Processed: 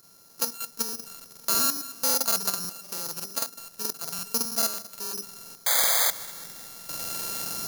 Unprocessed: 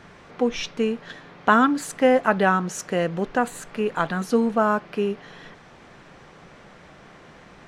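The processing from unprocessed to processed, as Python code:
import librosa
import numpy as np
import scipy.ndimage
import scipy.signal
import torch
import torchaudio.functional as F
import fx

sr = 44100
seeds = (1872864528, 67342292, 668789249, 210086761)

p1 = np.r_[np.sort(x[:len(x) // 32 * 32].reshape(-1, 32), axis=1).ravel(), x[len(x) // 32 * 32:]]
p2 = fx.recorder_agc(p1, sr, target_db=-11.0, rise_db_per_s=9.0, max_gain_db=30)
p3 = fx.env_lowpass_down(p2, sr, base_hz=1800.0, full_db=-18.5)
p4 = fx.highpass(p3, sr, hz=140.0, slope=6)
p5 = fx.high_shelf(p4, sr, hz=6000.0, db=-3.5)
p6 = fx.hum_notches(p5, sr, base_hz=50, count=9)
p7 = fx.level_steps(p6, sr, step_db=10)
p8 = fx.spec_paint(p7, sr, seeds[0], shape='noise', start_s=5.64, length_s=0.42, low_hz=460.0, high_hz=2300.0, level_db=-19.0)
p9 = p8 + fx.echo_feedback(p8, sr, ms=203, feedback_pct=58, wet_db=-18.0, dry=0)
p10 = (np.kron(p9[::8], np.eye(8)[0]) * 8)[:len(p9)]
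p11 = fx.buffer_crackle(p10, sr, first_s=0.84, period_s=0.11, block=2048, kind='repeat')
y = p11 * librosa.db_to_amplitude(-12.0)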